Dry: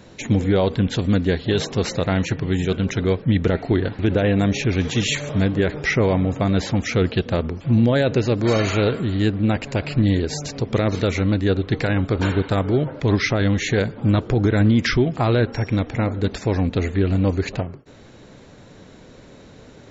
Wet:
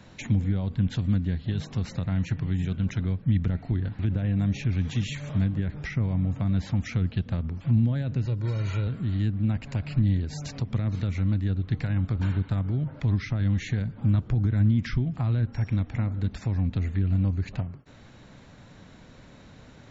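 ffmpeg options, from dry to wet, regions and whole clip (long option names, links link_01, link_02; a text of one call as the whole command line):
ffmpeg -i in.wav -filter_complex "[0:a]asettb=1/sr,asplit=3[link_01][link_02][link_03];[link_01]atrim=end=8.254[link_04];[link_02]atrim=start=8.25:end=8.87,asetpts=PTS-STARTPTS,afade=type=in:duration=0.004:curve=qsin,afade=type=out:start_time=0.616:duration=0.004:curve=qsin,highpass=97,aecho=1:1:2.1:0.65,atrim=end_sample=27342[link_05];[link_03]atrim=start=8.866[link_06];[link_04][link_05]acrossfade=duration=0.004:curve1=hsin:curve2=qsin[link_07];[link_07][link_06]acrossfade=duration=0.004:curve1=qsin:curve2=hsin,highshelf=frequency=4400:gain=-6.5,acrossover=split=230[link_08][link_09];[link_09]acompressor=threshold=-33dB:ratio=6[link_10];[link_08][link_10]amix=inputs=2:normalize=0,equalizer=frequency=420:width=1.3:gain=-9.5,volume=-2dB" out.wav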